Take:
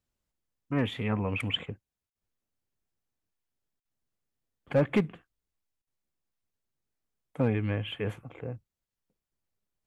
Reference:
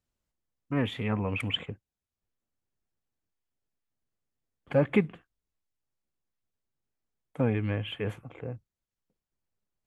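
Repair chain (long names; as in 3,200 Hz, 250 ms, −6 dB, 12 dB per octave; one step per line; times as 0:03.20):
clipped peaks rebuilt −17 dBFS
repair the gap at 0:02.10/0:03.80/0:05.82, 51 ms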